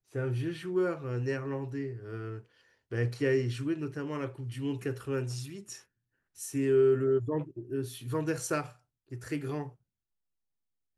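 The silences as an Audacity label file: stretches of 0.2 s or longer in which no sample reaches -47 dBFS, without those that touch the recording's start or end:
2.410000	2.910000	silence
5.820000	6.370000	silence
8.720000	9.110000	silence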